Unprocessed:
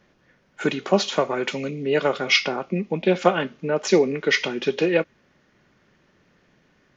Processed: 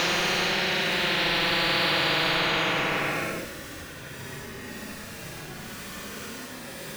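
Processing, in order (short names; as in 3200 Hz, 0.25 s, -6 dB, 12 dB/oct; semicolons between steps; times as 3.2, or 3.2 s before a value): crackle 220/s -44 dBFS; Paulstretch 18×, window 0.05 s, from 4.86; spectral compressor 10:1; gain -7.5 dB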